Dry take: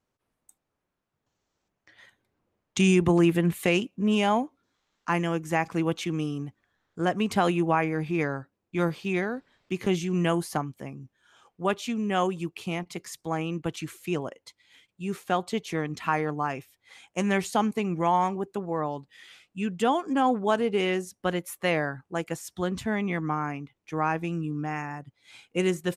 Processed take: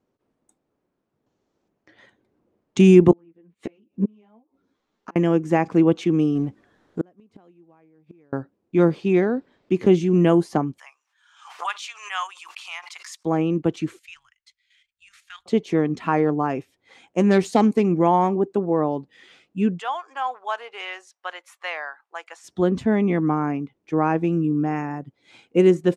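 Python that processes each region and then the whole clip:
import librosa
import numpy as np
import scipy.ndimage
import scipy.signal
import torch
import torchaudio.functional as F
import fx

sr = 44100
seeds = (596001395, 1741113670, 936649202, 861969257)

y = fx.chain(x, sr, fx.env_lowpass_down(base_hz=2600.0, full_db=-16.5),
    fx.gate_flip(shuts_db=-19.0, range_db=-37),
    fx.ensemble(), at=(3.11, 5.16))
y = fx.chain(y, sr, fx.law_mismatch(coded='mu'),
    fx.gate_flip(shuts_db=-21.0, range_db=-39), at=(6.35, 8.33))
y = fx.chain(y, sr, fx.steep_highpass(hz=980.0, slope=36),
    fx.high_shelf(hz=2100.0, db=6.0),
    fx.pre_swell(db_per_s=92.0), at=(10.78, 13.25))
y = fx.chain(y, sr, fx.cheby2_bandstop(low_hz=160.0, high_hz=620.0, order=4, stop_db=60),
    fx.level_steps(step_db=10), at=(13.99, 15.46))
y = fx.chain(y, sr, fx.self_delay(depth_ms=0.086),
    fx.high_shelf(hz=3800.0, db=7.5), at=(17.31, 17.92))
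y = fx.chain(y, sr, fx.highpass(hz=920.0, slope=24),
    fx.high_shelf(hz=10000.0, db=-11.0), at=(19.79, 22.44))
y = scipy.signal.sosfilt(scipy.signal.butter(2, 7300.0, 'lowpass', fs=sr, output='sos'), y)
y = fx.peak_eq(y, sr, hz=320.0, db=13.5, octaves=2.6)
y = y * 10.0 ** (-2.0 / 20.0)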